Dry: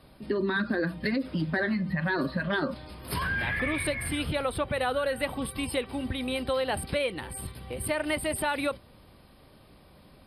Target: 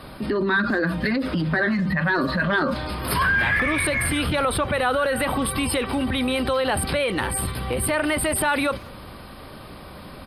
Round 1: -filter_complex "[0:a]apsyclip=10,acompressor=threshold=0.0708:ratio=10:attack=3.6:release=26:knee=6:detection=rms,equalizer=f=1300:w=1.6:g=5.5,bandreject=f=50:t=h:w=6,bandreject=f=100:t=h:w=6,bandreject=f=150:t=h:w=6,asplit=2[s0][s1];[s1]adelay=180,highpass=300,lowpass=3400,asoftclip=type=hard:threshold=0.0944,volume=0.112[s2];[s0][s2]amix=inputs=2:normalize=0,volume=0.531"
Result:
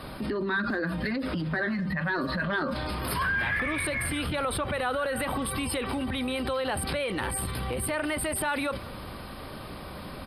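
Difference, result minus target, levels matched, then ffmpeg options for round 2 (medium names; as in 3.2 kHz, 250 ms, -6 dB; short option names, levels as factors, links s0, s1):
compression: peak gain reduction +7 dB
-filter_complex "[0:a]apsyclip=10,acompressor=threshold=0.178:ratio=10:attack=3.6:release=26:knee=6:detection=rms,equalizer=f=1300:w=1.6:g=5.5,bandreject=f=50:t=h:w=6,bandreject=f=100:t=h:w=6,bandreject=f=150:t=h:w=6,asplit=2[s0][s1];[s1]adelay=180,highpass=300,lowpass=3400,asoftclip=type=hard:threshold=0.0944,volume=0.112[s2];[s0][s2]amix=inputs=2:normalize=0,volume=0.531"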